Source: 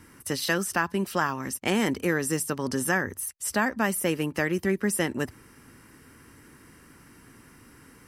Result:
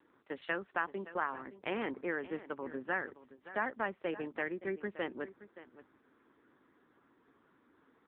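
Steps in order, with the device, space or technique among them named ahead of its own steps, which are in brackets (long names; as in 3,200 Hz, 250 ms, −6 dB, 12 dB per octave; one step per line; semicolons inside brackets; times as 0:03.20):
adaptive Wiener filter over 15 samples
satellite phone (band-pass filter 350–3,200 Hz; single-tap delay 571 ms −15.5 dB; level −7 dB; AMR narrowband 6.7 kbit/s 8,000 Hz)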